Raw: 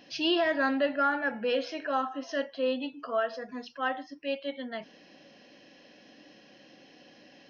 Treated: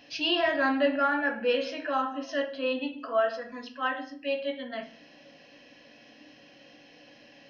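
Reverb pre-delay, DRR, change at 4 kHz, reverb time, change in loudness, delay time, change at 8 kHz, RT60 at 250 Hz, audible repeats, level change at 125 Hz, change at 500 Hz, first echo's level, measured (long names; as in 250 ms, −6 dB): 5 ms, 3.0 dB, +2.5 dB, 0.50 s, +2.0 dB, no echo audible, can't be measured, 0.75 s, no echo audible, can't be measured, +2.0 dB, no echo audible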